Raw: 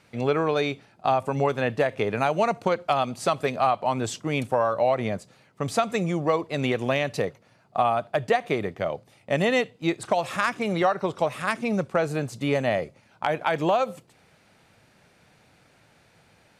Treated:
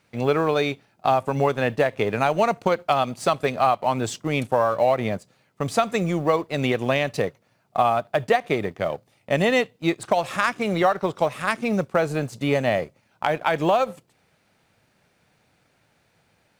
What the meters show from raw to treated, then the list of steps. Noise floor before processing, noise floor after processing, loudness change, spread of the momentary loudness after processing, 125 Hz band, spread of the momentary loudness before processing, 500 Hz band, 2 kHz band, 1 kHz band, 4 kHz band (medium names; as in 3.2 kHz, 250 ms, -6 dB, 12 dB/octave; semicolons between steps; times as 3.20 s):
-60 dBFS, -66 dBFS, +2.5 dB, 6 LU, +2.0 dB, 6 LU, +2.5 dB, +2.5 dB, +2.5 dB, +2.5 dB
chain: companding laws mixed up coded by A; trim +3 dB